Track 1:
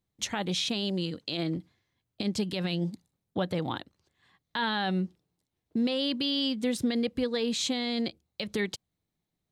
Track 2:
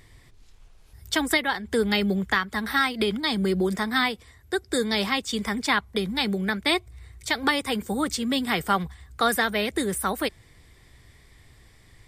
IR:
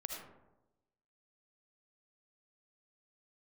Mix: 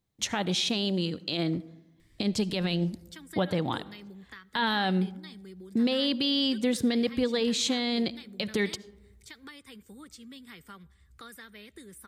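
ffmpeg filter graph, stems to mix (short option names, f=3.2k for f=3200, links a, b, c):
-filter_complex "[0:a]volume=1dB,asplit=2[a][b];[b]volume=-13.5dB[c];[1:a]equalizer=f=730:w=1.8:g=-13.5,acompressor=threshold=-44dB:ratio=2,adelay=2000,volume=-10.5dB,asplit=2[d][e];[e]volume=-21dB[f];[2:a]atrim=start_sample=2205[g];[c][f]amix=inputs=2:normalize=0[h];[h][g]afir=irnorm=-1:irlink=0[i];[a][d][i]amix=inputs=3:normalize=0"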